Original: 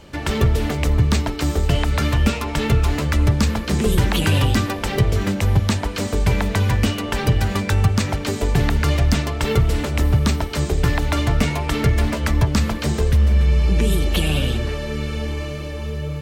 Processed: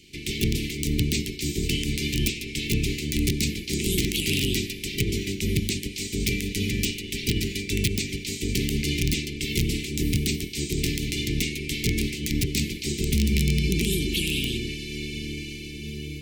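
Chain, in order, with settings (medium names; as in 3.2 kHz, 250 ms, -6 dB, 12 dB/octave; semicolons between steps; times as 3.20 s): spectral peaks clipped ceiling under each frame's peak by 16 dB; integer overflow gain 6.5 dB; Chebyshev band-stop 390–2200 Hz, order 4; trim -6 dB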